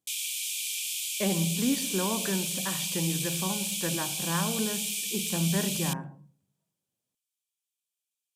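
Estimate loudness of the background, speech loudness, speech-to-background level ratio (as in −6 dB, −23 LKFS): −30.0 LKFS, −32.0 LKFS, −2.0 dB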